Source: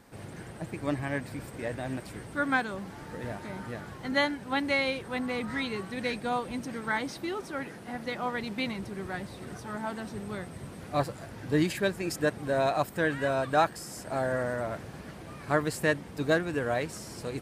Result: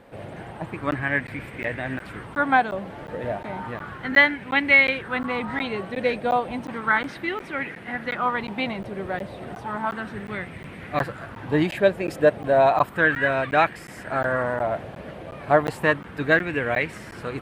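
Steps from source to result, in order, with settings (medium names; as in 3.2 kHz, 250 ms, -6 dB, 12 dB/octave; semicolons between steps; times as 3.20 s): resonant high shelf 4.1 kHz -9 dB, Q 1.5; crackling interface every 0.36 s, samples 512, zero, from 0.91 s; sweeping bell 0.33 Hz 560–2200 Hz +10 dB; trim +3.5 dB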